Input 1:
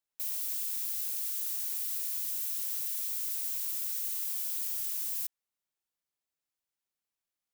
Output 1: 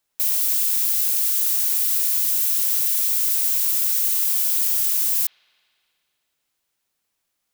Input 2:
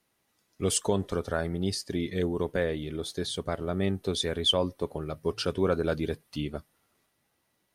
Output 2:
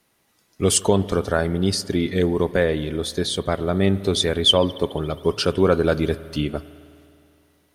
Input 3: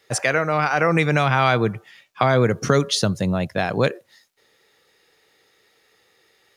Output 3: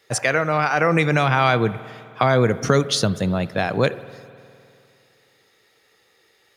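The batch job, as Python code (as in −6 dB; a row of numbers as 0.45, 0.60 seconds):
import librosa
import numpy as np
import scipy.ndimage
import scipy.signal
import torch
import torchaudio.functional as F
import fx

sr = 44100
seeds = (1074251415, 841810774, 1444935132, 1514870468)

y = fx.rev_spring(x, sr, rt60_s=2.6, pass_ms=(51,), chirp_ms=35, drr_db=16.0)
y = y * 10.0 ** (-22 / 20.0) / np.sqrt(np.mean(np.square(y)))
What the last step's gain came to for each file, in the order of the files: +14.0, +8.5, +0.5 decibels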